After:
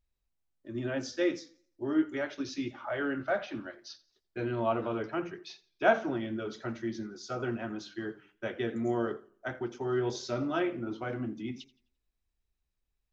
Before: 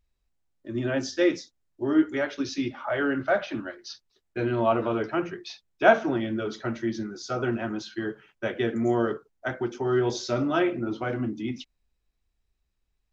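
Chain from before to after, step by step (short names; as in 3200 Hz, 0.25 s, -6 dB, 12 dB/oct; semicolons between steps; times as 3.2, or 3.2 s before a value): warbling echo 86 ms, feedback 34%, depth 101 cents, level -20 dB; gain -6.5 dB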